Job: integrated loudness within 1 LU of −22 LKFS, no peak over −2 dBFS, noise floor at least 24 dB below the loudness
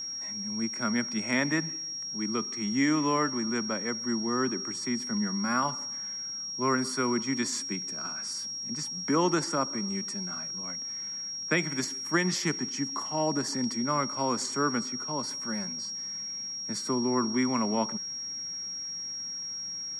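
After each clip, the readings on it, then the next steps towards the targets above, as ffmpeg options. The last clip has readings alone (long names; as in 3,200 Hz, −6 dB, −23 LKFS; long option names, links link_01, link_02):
interfering tone 5,600 Hz; level of the tone −34 dBFS; integrated loudness −30.0 LKFS; sample peak −12.5 dBFS; target loudness −22.0 LKFS
→ -af "bandreject=frequency=5600:width=30"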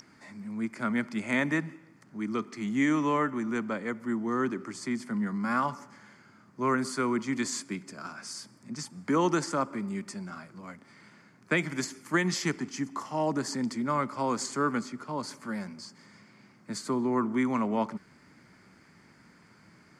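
interfering tone none found; integrated loudness −31.0 LKFS; sample peak −13.0 dBFS; target loudness −22.0 LKFS
→ -af "volume=9dB"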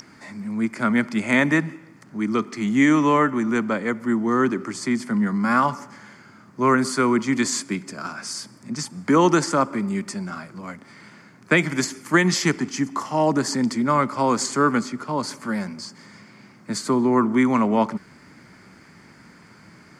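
integrated loudness −22.0 LKFS; sample peak −4.0 dBFS; background noise floor −50 dBFS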